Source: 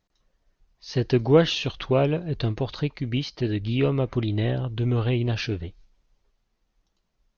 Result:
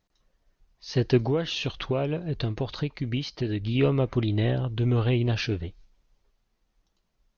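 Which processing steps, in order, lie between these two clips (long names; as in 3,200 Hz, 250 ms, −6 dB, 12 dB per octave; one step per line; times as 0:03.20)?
0:01.25–0:03.75: downward compressor 4 to 1, threshold −24 dBFS, peak gain reduction 11 dB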